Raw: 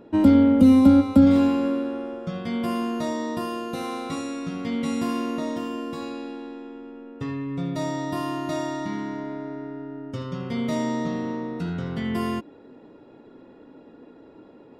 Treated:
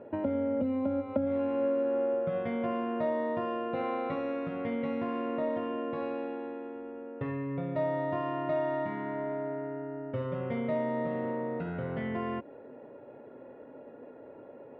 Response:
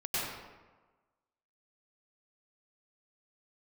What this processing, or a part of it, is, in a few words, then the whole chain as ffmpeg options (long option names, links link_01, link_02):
bass amplifier: -af "acompressor=threshold=-27dB:ratio=5,highpass=70,equalizer=frequency=79:width_type=q:width=4:gain=-8,equalizer=frequency=190:width_type=q:width=4:gain=-10,equalizer=frequency=310:width_type=q:width=4:gain=-7,equalizer=frequency=570:width_type=q:width=4:gain=9,equalizer=frequency=1200:width_type=q:width=4:gain=-4,lowpass=frequency=2300:width=0.5412,lowpass=frequency=2300:width=1.3066"